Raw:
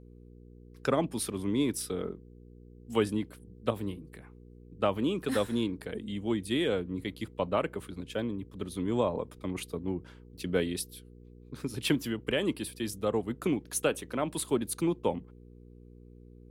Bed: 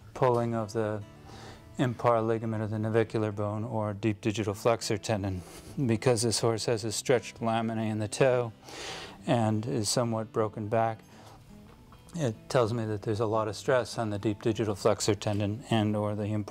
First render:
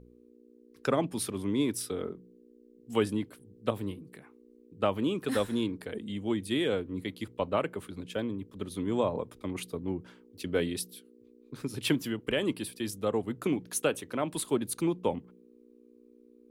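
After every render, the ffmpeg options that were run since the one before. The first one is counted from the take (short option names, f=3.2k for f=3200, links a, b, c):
-af "bandreject=f=60:t=h:w=4,bandreject=f=120:t=h:w=4,bandreject=f=180:t=h:w=4"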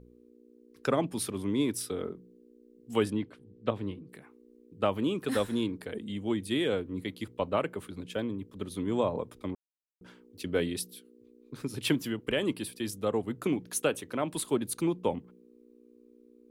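-filter_complex "[0:a]asettb=1/sr,asplit=3[a][b][c];[a]atrim=end=3.104[d];[b]atrim=start=3.1:end=4.09,asetpts=PTS-STARTPTS,afade=t=in:d=0.004:c=qsin,afade=t=out:st=0.986:d=0.004:c=qsin,lowpass=4.1k[e];[c]atrim=start=4.086[f];[d][e]acrossfade=d=0.004:c1=hsin:c2=qsin[g];[g][f]acrossfade=d=0.004:c1=qsin:c2=hsin,asplit=3[h][i][j];[h]atrim=end=9.55,asetpts=PTS-STARTPTS,afade=t=out:st=9.546:d=0.004:c=hsin[k];[i]atrim=start=9.55:end=10.01,asetpts=PTS-STARTPTS,volume=0[l];[j]atrim=start=10.01,asetpts=PTS-STARTPTS,afade=t=in:d=0.004:c=hsin[m];[k][l][m]concat=n=3:v=0:a=1"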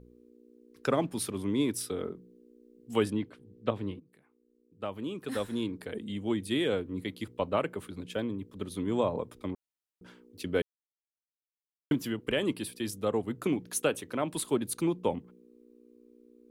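-filter_complex "[0:a]asettb=1/sr,asplit=3[a][b][c];[a]atrim=end=0.894[d];[b]atrim=start=0.89:end=1.3,asetpts=PTS-STARTPTS,afade=t=in:d=0.004:c=qsin,afade=t=out:st=0.406:d=0.004:c=qsin,aeval=exprs='sgn(val(0))*max(abs(val(0))-0.00106,0)':c=same[e];[c]atrim=start=1.296[f];[d][e]acrossfade=d=0.004:c1=hsin:c2=qsin[g];[g][f]acrossfade=d=0.004:c1=qsin:c2=hsin,asplit=4[h][i][j][k];[h]atrim=end=4,asetpts=PTS-STARTPTS,afade=t=out:st=3.996:d=0.004:c=hsin:silence=0.199526[l];[i]atrim=start=4:end=10.62,asetpts=PTS-STARTPTS,afade=t=in:d=1.93:c=qua:silence=0.199526,afade=t=out:st=6.616:d=0.004:c=hsin[m];[j]atrim=start=10.62:end=11.91,asetpts=PTS-STARTPTS,volume=0[n];[k]atrim=start=11.91,asetpts=PTS-STARTPTS,afade=t=in:d=0.004:c=hsin[o];[l][m][n][o]concat=n=4:v=0:a=1"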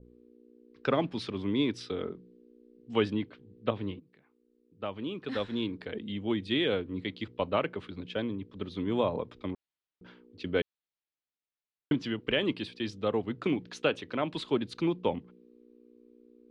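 -af "lowpass=f=4.3k:w=0.5412,lowpass=f=4.3k:w=1.3066,adynamicequalizer=threshold=0.00501:dfrequency=1900:dqfactor=0.7:tfrequency=1900:tqfactor=0.7:attack=5:release=100:ratio=0.375:range=2.5:mode=boostabove:tftype=highshelf"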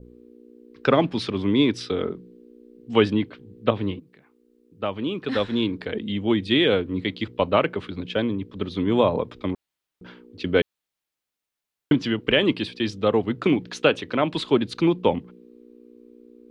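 -af "volume=9dB"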